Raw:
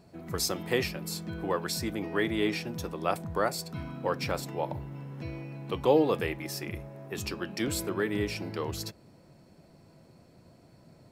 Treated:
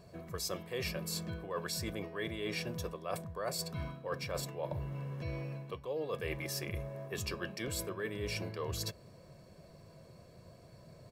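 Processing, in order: comb 1.8 ms, depth 56%; reverse; compression 20:1, threshold -34 dBFS, peak gain reduction 19.5 dB; reverse

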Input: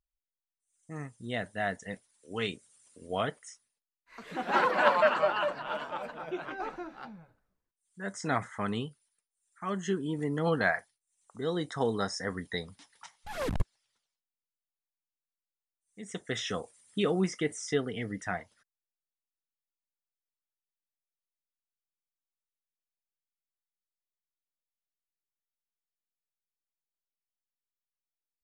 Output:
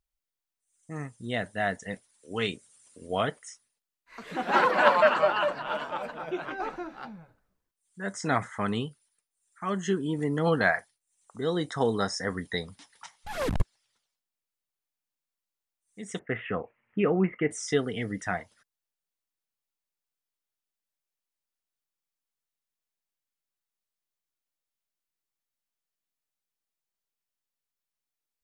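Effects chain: 16.19–17.51 s: steep low-pass 2.7 kHz 72 dB/octave; trim +3.5 dB

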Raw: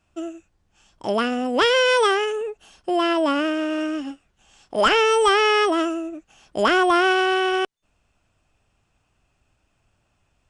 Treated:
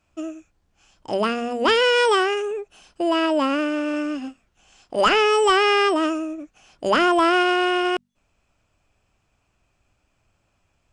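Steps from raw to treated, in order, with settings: hum notches 50/100/150/200/250 Hz; speed mistake 25 fps video run at 24 fps

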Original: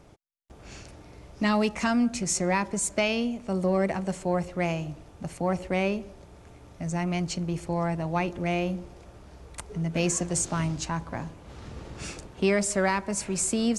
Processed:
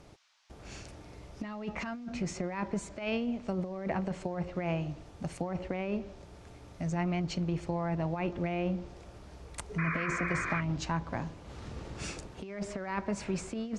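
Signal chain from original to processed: low-pass that closes with the level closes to 2.6 kHz, closed at -24 dBFS; compressor with a negative ratio -28 dBFS, ratio -0.5; painted sound noise, 9.78–10.61 s, 980–2500 Hz -31 dBFS; band noise 740–6000 Hz -66 dBFS; trim -4 dB

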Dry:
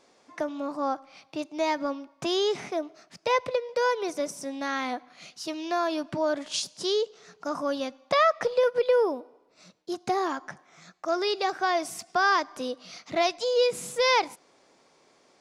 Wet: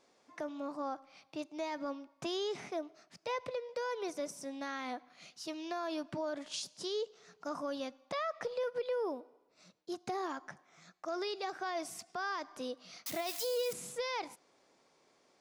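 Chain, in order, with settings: 13.06–13.73 s: zero-crossing glitches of -23 dBFS; peak limiter -20.5 dBFS, peak gain reduction 9 dB; trim -8 dB

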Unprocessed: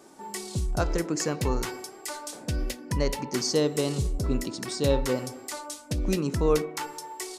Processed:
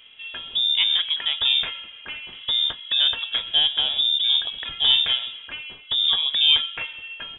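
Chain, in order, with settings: frequency inversion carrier 3.6 kHz; trim +4 dB

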